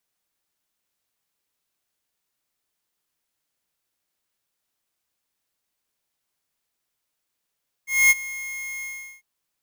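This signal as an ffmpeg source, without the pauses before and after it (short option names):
-f lavfi -i "aevalsrc='0.211*(2*lt(mod(2150*t,1),0.5)-1)':d=1.348:s=44100,afade=t=in:d=0.235,afade=t=out:st=0.235:d=0.031:silence=0.112,afade=t=out:st=0.96:d=0.388"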